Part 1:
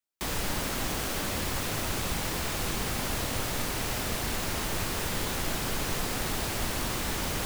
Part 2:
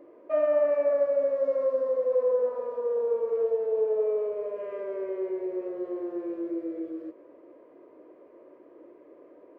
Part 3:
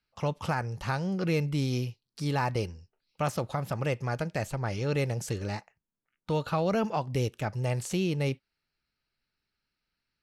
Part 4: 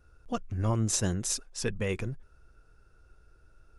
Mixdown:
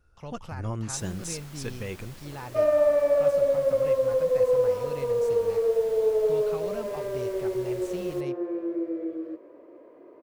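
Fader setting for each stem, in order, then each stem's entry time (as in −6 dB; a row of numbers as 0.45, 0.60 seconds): −17.5, +2.5, −11.0, −4.5 decibels; 0.75, 2.25, 0.00, 0.00 seconds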